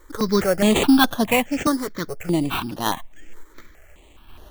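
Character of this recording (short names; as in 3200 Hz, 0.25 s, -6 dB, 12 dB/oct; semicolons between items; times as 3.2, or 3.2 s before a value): random-step tremolo; aliases and images of a low sample rate 5000 Hz, jitter 0%; notches that jump at a steady rate 4.8 Hz 720–7600 Hz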